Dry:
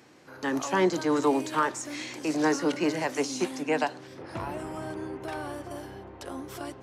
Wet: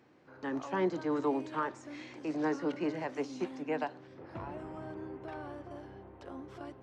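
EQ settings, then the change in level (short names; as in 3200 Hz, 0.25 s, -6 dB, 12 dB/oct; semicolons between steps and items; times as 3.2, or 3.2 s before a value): tape spacing loss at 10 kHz 23 dB; -6.0 dB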